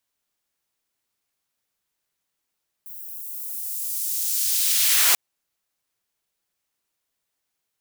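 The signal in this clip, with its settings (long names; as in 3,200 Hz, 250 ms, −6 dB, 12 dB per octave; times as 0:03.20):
filter sweep on noise white, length 2.29 s highpass, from 15,000 Hz, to 500 Hz, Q 0.79, linear, gain ramp +18 dB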